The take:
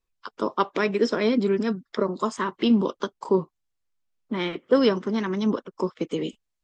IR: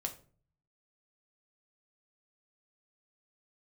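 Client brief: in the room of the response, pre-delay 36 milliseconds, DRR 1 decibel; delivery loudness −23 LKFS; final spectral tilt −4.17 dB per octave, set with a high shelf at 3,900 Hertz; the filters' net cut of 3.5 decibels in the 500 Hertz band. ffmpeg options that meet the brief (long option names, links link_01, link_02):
-filter_complex "[0:a]equalizer=frequency=500:width_type=o:gain=-4.5,highshelf=frequency=3900:gain=8,asplit=2[link_01][link_02];[1:a]atrim=start_sample=2205,adelay=36[link_03];[link_02][link_03]afir=irnorm=-1:irlink=0,volume=-1dB[link_04];[link_01][link_04]amix=inputs=2:normalize=0,volume=1dB"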